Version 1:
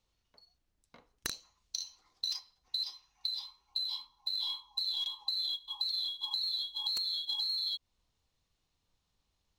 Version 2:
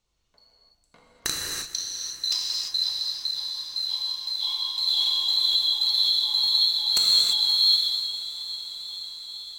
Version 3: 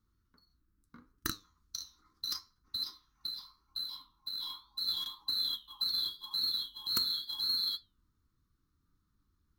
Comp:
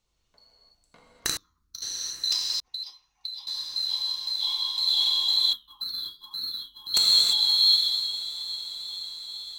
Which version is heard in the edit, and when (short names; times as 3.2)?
2
1.37–1.82 from 3
2.6–3.47 from 1
5.53–6.94 from 3